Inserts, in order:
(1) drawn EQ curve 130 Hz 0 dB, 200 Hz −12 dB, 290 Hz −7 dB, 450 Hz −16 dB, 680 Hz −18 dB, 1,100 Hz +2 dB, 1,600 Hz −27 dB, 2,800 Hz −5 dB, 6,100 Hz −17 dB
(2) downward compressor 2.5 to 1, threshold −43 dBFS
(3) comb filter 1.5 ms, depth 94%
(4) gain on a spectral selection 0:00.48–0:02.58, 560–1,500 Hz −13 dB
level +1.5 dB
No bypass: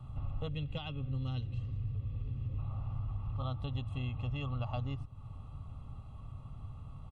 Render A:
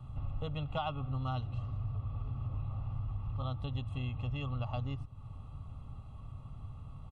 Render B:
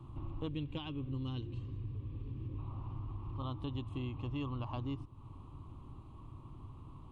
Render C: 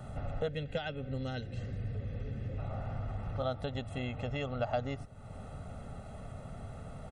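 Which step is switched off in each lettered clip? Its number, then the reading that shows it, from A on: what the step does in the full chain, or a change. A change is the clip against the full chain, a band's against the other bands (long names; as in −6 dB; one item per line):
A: 4, 1 kHz band +5.5 dB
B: 3, 250 Hz band +5.0 dB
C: 1, 500 Hz band +8.5 dB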